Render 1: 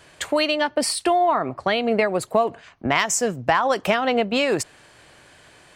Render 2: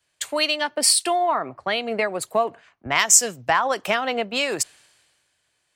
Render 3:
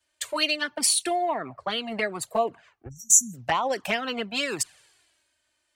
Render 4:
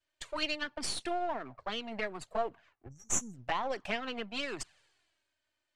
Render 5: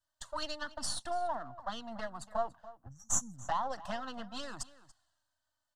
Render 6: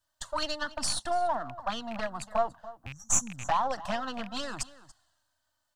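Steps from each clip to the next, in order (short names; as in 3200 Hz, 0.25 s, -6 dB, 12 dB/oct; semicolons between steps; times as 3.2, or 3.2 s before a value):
tilt +2 dB/oct; three-band expander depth 70%; gain -2 dB
spectral delete 2.88–3.34, 270–5600 Hz; envelope flanger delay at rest 3.3 ms, full sweep at -16 dBFS
half-wave gain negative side -7 dB; air absorption 82 m; gain -5.5 dB
fixed phaser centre 970 Hz, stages 4; outdoor echo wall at 49 m, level -17 dB; gain +1.5 dB
rattling part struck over -48 dBFS, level -37 dBFS; in parallel at -11 dB: one-sided clip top -29.5 dBFS; on the sum: gain +4.5 dB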